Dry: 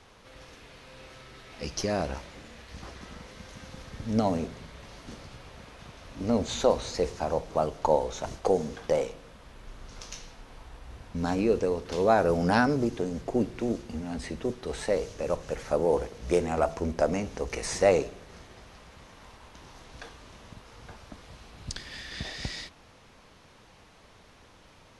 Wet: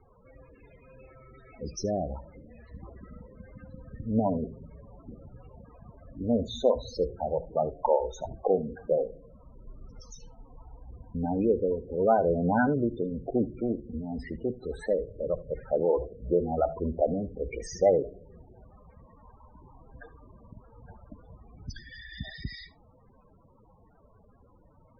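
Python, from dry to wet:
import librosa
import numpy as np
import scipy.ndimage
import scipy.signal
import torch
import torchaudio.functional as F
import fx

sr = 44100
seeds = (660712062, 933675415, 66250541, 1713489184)

y = fx.peak_eq(x, sr, hz=10000.0, db=-10.0, octaves=1.5, at=(2.87, 3.45))
y = fx.spec_topn(y, sr, count=16)
y = y + 10.0 ** (-19.5 / 20.0) * np.pad(y, (int(74 * sr / 1000.0), 0))[:len(y)]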